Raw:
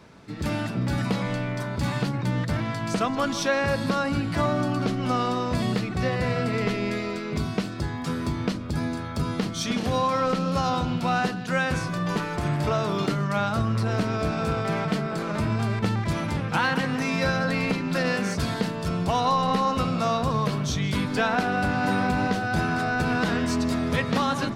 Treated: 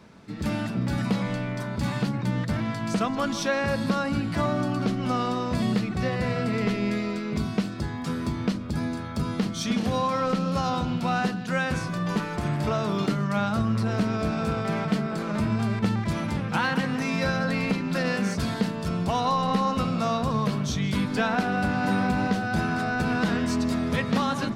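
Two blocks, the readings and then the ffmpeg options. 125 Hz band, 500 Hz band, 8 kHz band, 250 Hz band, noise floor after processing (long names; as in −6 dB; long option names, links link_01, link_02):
−1.0 dB, −2.0 dB, −2.0 dB, +1.0 dB, −33 dBFS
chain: -af "equalizer=frequency=210:width=5.2:gain=7,volume=-2dB"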